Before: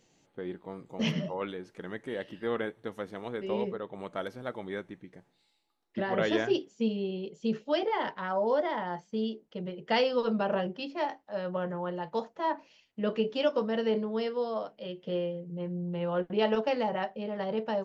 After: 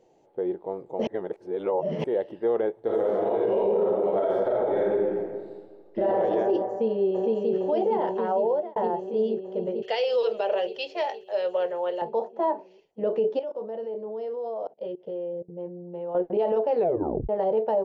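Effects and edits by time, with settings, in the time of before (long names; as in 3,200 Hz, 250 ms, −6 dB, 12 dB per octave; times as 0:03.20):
0:01.07–0:02.04: reverse
0:02.80–0:06.17: thrown reverb, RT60 1.6 s, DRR −7.5 dB
0:06.68–0:07.55: delay throw 460 ms, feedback 75%, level −1 dB
0:08.22–0:08.76: fade out
0:09.82–0:12.02: drawn EQ curve 120 Hz 0 dB, 180 Hz −21 dB, 310 Hz −14 dB, 450 Hz −1 dB, 930 Hz −5 dB, 2,600 Hz +15 dB
0:13.39–0:16.15: output level in coarse steps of 21 dB
0:16.75: tape stop 0.54 s
whole clip: flat-topped bell 560 Hz +13.5 dB; brickwall limiter −14.5 dBFS; high-shelf EQ 2,000 Hz −8.5 dB; level −1.5 dB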